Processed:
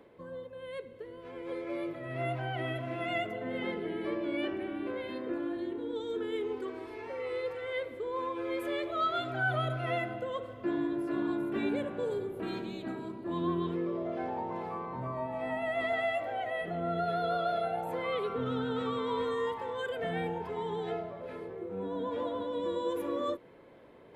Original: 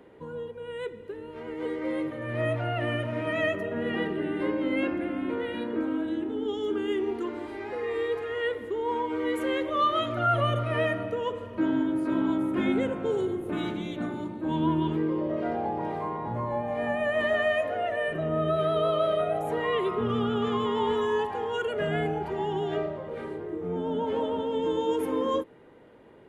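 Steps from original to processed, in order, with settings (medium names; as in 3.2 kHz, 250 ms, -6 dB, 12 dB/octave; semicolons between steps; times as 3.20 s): reverse; upward compressor, threshold -43 dBFS; reverse; speed mistake 44.1 kHz file played as 48 kHz; trim -6 dB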